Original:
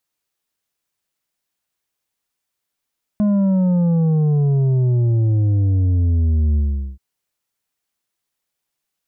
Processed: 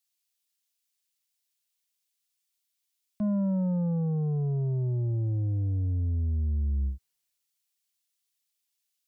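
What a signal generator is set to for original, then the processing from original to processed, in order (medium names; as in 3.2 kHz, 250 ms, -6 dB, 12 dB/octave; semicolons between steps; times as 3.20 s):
sub drop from 210 Hz, over 3.78 s, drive 6.5 dB, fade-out 0.42 s, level -14 dB
peak limiter -25 dBFS; three bands expanded up and down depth 40%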